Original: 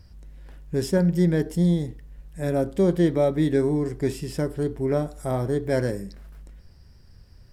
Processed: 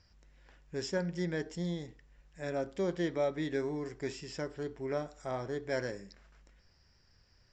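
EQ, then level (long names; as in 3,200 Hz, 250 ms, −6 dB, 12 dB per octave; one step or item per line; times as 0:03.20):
Chebyshev low-pass with heavy ripple 7,500 Hz, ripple 3 dB
low-shelf EQ 370 Hz −12 dB
−3.5 dB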